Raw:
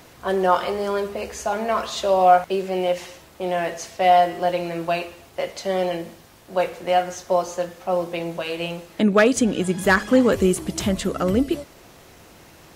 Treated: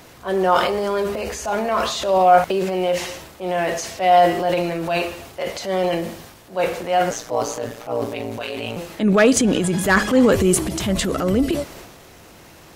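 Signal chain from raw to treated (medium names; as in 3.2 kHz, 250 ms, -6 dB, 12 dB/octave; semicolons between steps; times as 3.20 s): transient shaper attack -6 dB, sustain +7 dB; 7.10–8.77 s: ring modulator 59 Hz; trim +2.5 dB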